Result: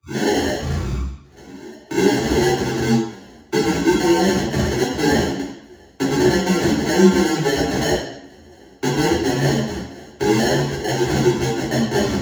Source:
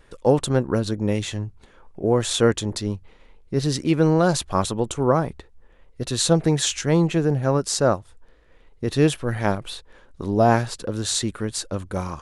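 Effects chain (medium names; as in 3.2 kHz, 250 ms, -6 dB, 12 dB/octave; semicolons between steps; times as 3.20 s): tape start-up on the opening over 2.53 s; high-pass 230 Hz 6 dB/octave; level-controlled noise filter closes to 1.1 kHz, open at -15 dBFS; treble shelf 2.8 kHz +7 dB; in parallel at -0.5 dB: peak limiter -14.5 dBFS, peak gain reduction 10.5 dB; on the sum: compression 6:1, threshold -27 dBFS, peak gain reduction 16 dB; sample-rate reducer 1.2 kHz, jitter 0%; frequency shift +24 Hz; reverberation RT60 0.75 s, pre-delay 3 ms, DRR -4.5 dB; three-phase chorus; trim +3 dB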